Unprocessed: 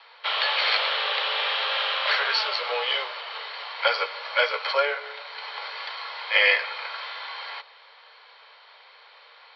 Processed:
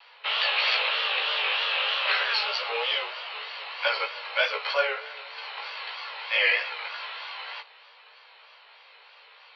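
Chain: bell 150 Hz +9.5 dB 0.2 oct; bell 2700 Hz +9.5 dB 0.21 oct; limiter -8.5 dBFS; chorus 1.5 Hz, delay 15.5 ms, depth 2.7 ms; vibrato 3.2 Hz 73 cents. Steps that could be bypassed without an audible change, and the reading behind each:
bell 150 Hz: input band starts at 380 Hz

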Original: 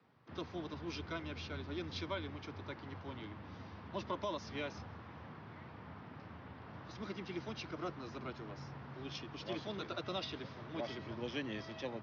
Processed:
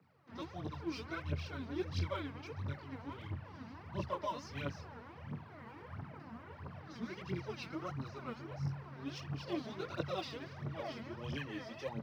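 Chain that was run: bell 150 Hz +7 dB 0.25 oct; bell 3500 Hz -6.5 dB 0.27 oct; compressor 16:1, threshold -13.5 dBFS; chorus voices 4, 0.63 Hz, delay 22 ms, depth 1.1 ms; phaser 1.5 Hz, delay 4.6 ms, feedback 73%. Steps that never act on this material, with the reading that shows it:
compressor, threshold -13.5 dBFS: input peak -26.5 dBFS

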